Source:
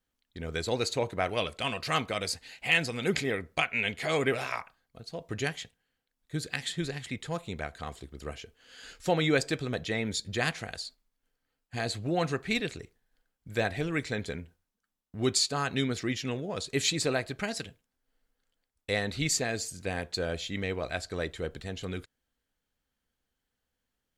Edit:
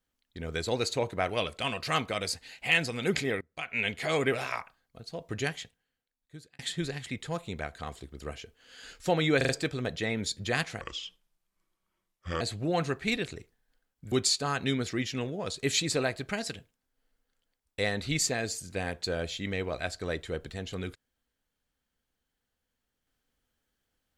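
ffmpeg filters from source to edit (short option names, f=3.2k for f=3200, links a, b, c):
-filter_complex "[0:a]asplit=9[a][b][c][d][e][f][g][h][i];[a]atrim=end=3.41,asetpts=PTS-STARTPTS,afade=t=out:st=3.406:d=0.004:c=hsin:silence=0.0841395[j];[b]atrim=start=3.41:end=6.59,asetpts=PTS-STARTPTS,afade=t=in:d=0.39:c=qua:silence=0.0841395,afade=t=out:st=2.11:d=1.07[k];[c]atrim=start=6.59:end=9.412,asetpts=PTS-STARTPTS,afade=t=in:d=0.004:c=hsin[l];[d]atrim=start=9.368:end=9.412[m];[e]atrim=start=9.368:end=9.412[n];[f]atrim=start=9.368:end=10.694[o];[g]atrim=start=10.69:end=11.84,asetpts=PTS-STARTPTS,asetrate=31752,aresample=44100[p];[h]atrim=start=11.836:end=13.552[q];[i]atrim=start=15.218[r];[j][k][l]concat=n=3:v=0:a=1[s];[s][m]acrossfade=d=0.004:c1=hsin:c2=hsin[t];[t][n]acrossfade=d=0.004:c1=hsin:c2=hsin[u];[u][o]acrossfade=d=0.004:c1=hsin:c2=hsin[v];[v][p]acrossfade=d=0.004:c1=hsin:c2=hsin[w];[w][q]acrossfade=d=0.004:c1=hsin:c2=hsin[x];[x][r]acrossfade=d=0.004:c1=hsin:c2=hsin"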